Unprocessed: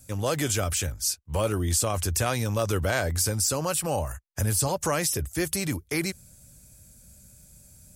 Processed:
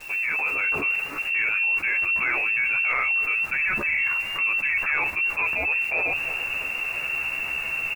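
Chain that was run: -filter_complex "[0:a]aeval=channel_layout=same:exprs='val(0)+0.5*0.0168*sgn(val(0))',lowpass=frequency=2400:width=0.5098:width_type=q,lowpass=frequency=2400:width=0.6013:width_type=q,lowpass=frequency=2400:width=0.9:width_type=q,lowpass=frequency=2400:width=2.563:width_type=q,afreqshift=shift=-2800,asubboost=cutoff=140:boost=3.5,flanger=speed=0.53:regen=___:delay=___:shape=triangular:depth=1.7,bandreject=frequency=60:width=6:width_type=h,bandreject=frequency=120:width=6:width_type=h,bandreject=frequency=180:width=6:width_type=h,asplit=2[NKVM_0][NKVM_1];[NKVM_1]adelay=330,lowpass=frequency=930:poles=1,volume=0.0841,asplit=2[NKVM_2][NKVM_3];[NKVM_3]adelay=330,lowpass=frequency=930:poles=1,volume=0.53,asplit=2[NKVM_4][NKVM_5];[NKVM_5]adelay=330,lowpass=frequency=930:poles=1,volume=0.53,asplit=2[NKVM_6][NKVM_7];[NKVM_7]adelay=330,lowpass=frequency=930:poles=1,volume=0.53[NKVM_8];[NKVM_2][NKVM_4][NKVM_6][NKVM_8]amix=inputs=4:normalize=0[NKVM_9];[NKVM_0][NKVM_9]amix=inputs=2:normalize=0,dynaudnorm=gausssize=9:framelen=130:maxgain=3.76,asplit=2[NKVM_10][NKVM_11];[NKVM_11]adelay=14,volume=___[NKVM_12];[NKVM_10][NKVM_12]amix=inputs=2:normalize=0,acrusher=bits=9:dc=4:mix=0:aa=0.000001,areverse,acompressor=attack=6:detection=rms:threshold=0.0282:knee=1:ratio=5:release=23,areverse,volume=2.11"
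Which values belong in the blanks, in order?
-80, 5.5, 0.794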